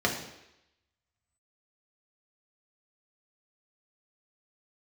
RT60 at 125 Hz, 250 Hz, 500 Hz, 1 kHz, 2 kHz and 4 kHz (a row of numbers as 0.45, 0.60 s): 0.70, 0.80, 0.85, 0.85, 0.90, 0.90 s